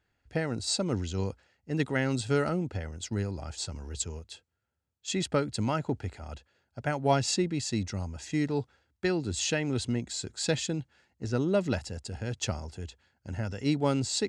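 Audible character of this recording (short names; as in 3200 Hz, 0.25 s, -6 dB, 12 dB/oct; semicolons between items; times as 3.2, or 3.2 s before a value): noise floor -78 dBFS; spectral tilt -4.5 dB/oct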